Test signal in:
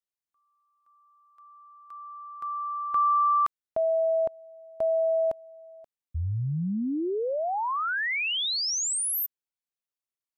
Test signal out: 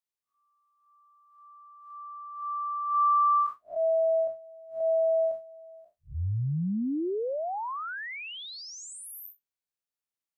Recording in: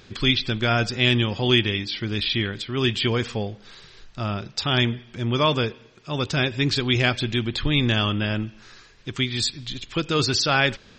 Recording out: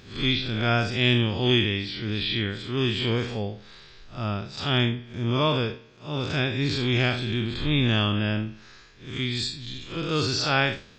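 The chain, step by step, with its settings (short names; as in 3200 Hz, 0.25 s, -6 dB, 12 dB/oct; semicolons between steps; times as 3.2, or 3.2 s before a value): time blur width 0.116 s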